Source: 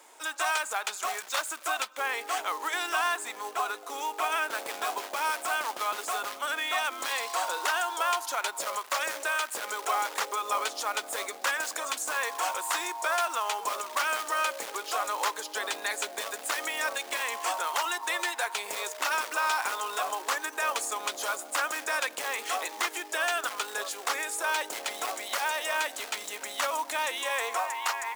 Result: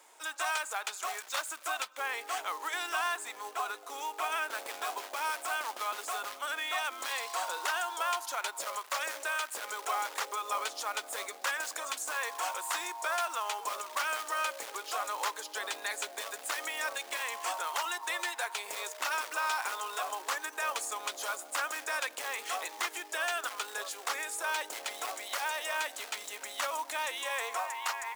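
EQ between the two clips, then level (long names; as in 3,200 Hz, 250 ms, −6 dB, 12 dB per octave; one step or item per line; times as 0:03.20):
high-pass filter 360 Hz 6 dB per octave
−4.0 dB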